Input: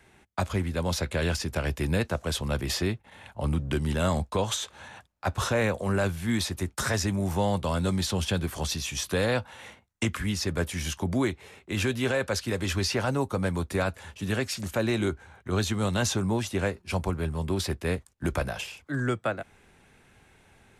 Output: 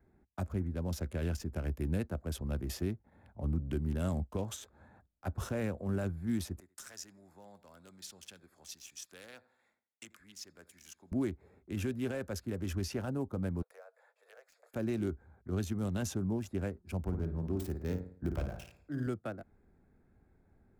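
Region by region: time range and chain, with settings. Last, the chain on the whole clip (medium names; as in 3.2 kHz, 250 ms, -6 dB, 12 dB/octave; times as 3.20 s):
6.60–11.12 s: band-pass filter 5.7 kHz, Q 0.62 + feedback delay 84 ms, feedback 42%, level -17 dB
13.62–14.74 s: rippled Chebyshev high-pass 460 Hz, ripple 3 dB + compression 4:1, threshold -38 dBFS
17.04–19.07 s: self-modulated delay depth 0.12 ms + peaking EQ 12 kHz -9 dB 0.32 oct + flutter echo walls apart 9.4 m, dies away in 0.5 s
whole clip: local Wiener filter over 15 samples; graphic EQ 125/500/1000/2000/4000/8000 Hz -6/-6/-11/-8/-11/-6 dB; trim -2.5 dB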